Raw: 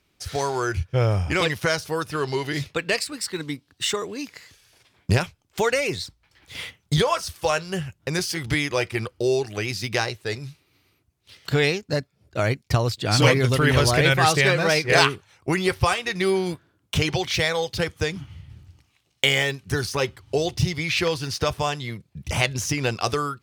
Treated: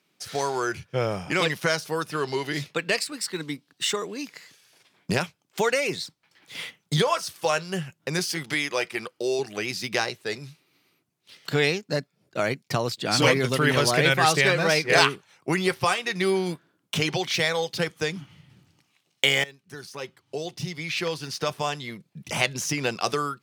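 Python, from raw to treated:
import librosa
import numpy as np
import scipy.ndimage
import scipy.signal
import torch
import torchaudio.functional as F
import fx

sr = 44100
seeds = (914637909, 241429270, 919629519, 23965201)

y = fx.low_shelf(x, sr, hz=230.0, db=-10.5, at=(8.43, 9.39))
y = fx.edit(y, sr, fx.fade_in_from(start_s=19.44, length_s=2.64, floor_db=-18.5), tone=tone)
y = scipy.signal.sosfilt(scipy.signal.cheby1(3, 1.0, 160.0, 'highpass', fs=sr, output='sos'), y)
y = y * 10.0 ** (-1.0 / 20.0)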